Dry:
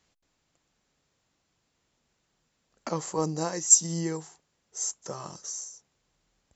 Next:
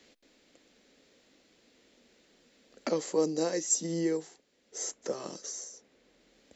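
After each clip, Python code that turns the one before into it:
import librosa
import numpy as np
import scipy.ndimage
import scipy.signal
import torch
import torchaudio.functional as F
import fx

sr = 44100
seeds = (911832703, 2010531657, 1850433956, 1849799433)

y = fx.graphic_eq(x, sr, hz=(125, 250, 500, 1000, 2000, 4000), db=(-10, 12, 11, -5, 7, 7))
y = fx.band_squash(y, sr, depth_pct=40)
y = F.gain(torch.from_numpy(y), -7.5).numpy()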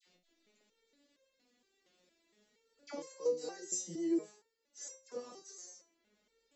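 y = fx.dispersion(x, sr, late='lows', ms=65.0, hz=1300.0)
y = fx.vibrato(y, sr, rate_hz=8.3, depth_cents=56.0)
y = fx.resonator_held(y, sr, hz=4.3, low_hz=180.0, high_hz=530.0)
y = F.gain(torch.from_numpy(y), 3.5).numpy()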